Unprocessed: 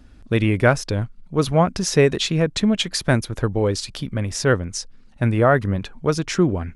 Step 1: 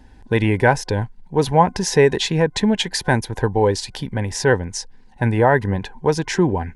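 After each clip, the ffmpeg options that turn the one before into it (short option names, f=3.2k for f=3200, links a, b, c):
-filter_complex "[0:a]superequalizer=7b=1.58:9b=3.55:10b=0.447:11b=1.78,asplit=2[a][b];[b]alimiter=limit=-7.5dB:level=0:latency=1:release=37,volume=-2dB[c];[a][c]amix=inputs=2:normalize=0,volume=-4.5dB"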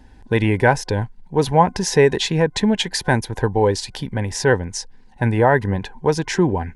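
-af anull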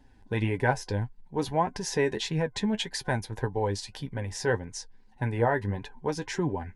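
-af "flanger=delay=6.9:depth=3.5:regen=39:speed=1.7:shape=sinusoidal,volume=-6.5dB"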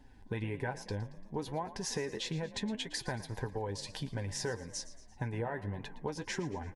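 -filter_complex "[0:a]acompressor=threshold=-34dB:ratio=6,asplit=6[a][b][c][d][e][f];[b]adelay=114,afreqshift=41,volume=-16dB[g];[c]adelay=228,afreqshift=82,volume=-21.5dB[h];[d]adelay=342,afreqshift=123,volume=-27dB[i];[e]adelay=456,afreqshift=164,volume=-32.5dB[j];[f]adelay=570,afreqshift=205,volume=-38.1dB[k];[a][g][h][i][j][k]amix=inputs=6:normalize=0"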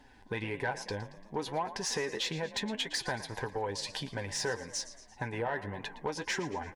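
-filter_complex "[0:a]asplit=2[a][b];[b]highpass=f=720:p=1,volume=13dB,asoftclip=type=tanh:threshold=-20.5dB[c];[a][c]amix=inputs=2:normalize=0,lowpass=f=5.7k:p=1,volume=-6dB"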